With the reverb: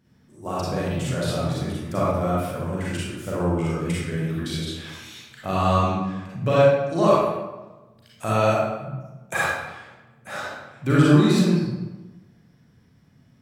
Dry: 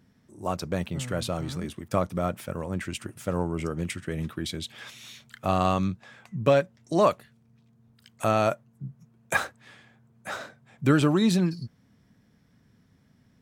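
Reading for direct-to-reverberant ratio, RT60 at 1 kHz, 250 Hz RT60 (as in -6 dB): -7.5 dB, 1.1 s, 1.2 s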